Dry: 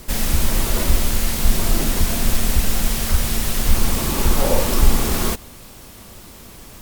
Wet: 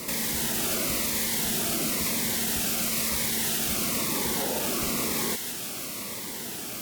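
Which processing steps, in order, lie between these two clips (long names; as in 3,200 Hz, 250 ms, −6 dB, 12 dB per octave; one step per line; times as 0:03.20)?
high-pass filter 200 Hz 12 dB per octave
parametric band 2,100 Hz +3.5 dB 0.31 octaves
in parallel at +1 dB: downward compressor, threshold −34 dBFS, peak gain reduction 17 dB
on the sum: brickwall limiter −18.5 dBFS, peak gain reduction 11.5 dB
on a send: delay with a high-pass on its return 166 ms, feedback 67%, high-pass 1,900 Hz, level −6 dB
on the sum: phaser whose notches keep moving one way falling 1 Hz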